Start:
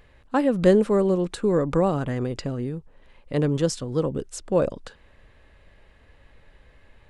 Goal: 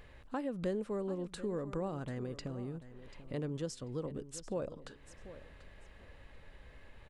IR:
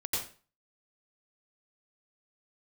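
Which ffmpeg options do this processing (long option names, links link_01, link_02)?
-filter_complex "[0:a]acompressor=threshold=-47dB:ratio=2,asplit=2[link_01][link_02];[link_02]aecho=0:1:739|1478:0.188|0.0396[link_03];[link_01][link_03]amix=inputs=2:normalize=0,volume=-1dB"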